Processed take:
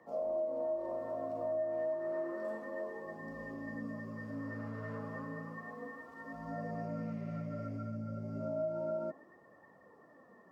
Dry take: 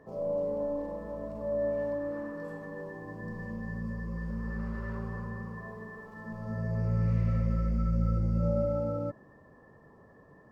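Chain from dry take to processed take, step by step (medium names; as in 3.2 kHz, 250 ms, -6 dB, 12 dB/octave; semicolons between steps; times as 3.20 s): frequency shift +53 Hz; flange 0.31 Hz, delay 0.9 ms, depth 8.5 ms, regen +51%; dynamic bell 590 Hz, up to +6 dB, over -49 dBFS, Q 1.1; compression 6:1, threshold -34 dBFS, peak gain reduction 10.5 dB; bass shelf 170 Hz -11.5 dB; trim +2 dB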